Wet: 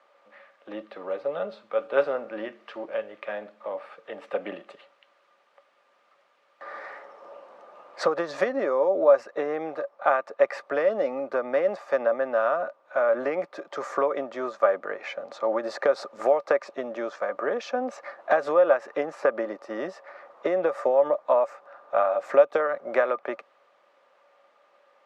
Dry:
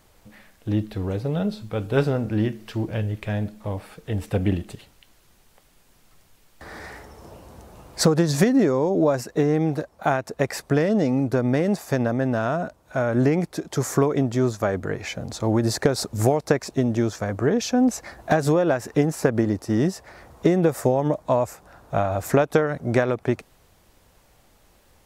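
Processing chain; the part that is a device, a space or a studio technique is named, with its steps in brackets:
0:22.12–0:22.60: dynamic equaliser 1,300 Hz, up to −5 dB, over −33 dBFS, Q 0.82
high-pass filter 160 Hz 24 dB per octave
tin-can telephone (band-pass filter 680–2,300 Hz; hollow resonant body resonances 560/1,200 Hz, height 14 dB, ringing for 70 ms)

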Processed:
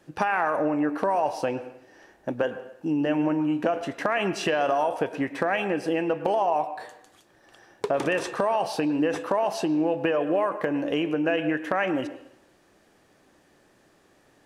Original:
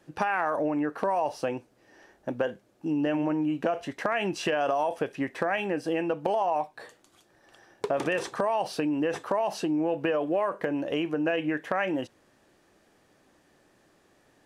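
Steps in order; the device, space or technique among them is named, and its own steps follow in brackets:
filtered reverb send (on a send: high-pass filter 230 Hz + low-pass filter 3,200 Hz 12 dB per octave + convolution reverb RT60 0.75 s, pre-delay 100 ms, DRR 11.5 dB)
on the sum: level +2.5 dB

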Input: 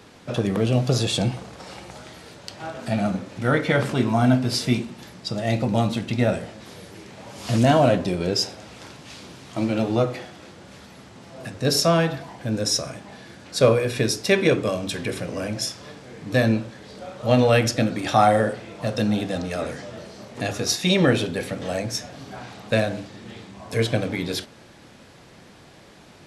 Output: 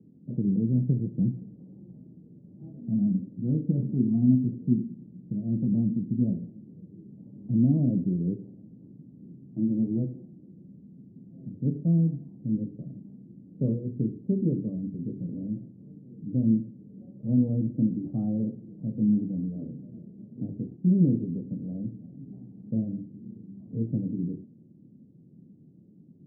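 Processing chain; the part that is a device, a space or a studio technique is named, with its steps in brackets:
high-pass filter 180 Hz 12 dB per octave
the neighbour's flat through the wall (low-pass filter 270 Hz 24 dB per octave; parametric band 160 Hz +5.5 dB 0.8 octaves)

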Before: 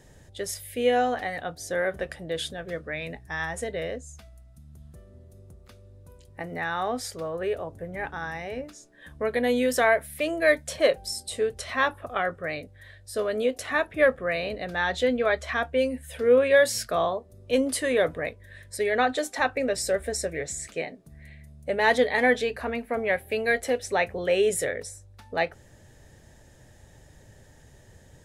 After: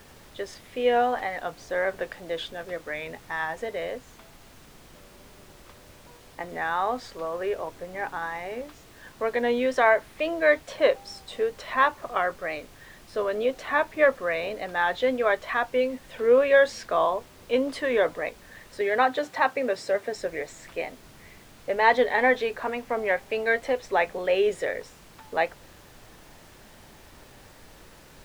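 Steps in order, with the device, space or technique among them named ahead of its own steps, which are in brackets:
horn gramophone (band-pass filter 260–3,900 Hz; parametric band 990 Hz +7.5 dB 0.47 octaves; tape wow and flutter; pink noise bed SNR 23 dB)
0:18.81–0:20.16: high-pass filter 90 Hz 24 dB per octave
high-shelf EQ 7,800 Hz −3.5 dB

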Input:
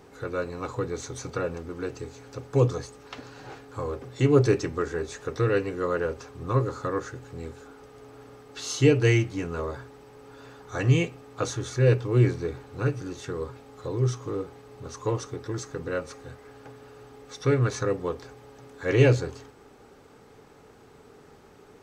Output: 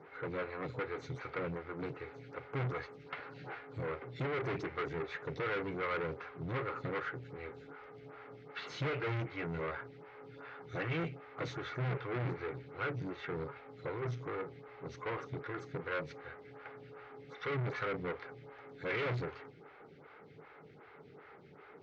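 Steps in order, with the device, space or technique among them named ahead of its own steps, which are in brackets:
vibe pedal into a guitar amplifier (phaser with staggered stages 2.6 Hz; tube saturation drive 35 dB, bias 0.5; loudspeaker in its box 89–3,900 Hz, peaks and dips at 150 Hz +9 dB, 240 Hz −5 dB, 1,400 Hz +6 dB, 2,100 Hz +10 dB)

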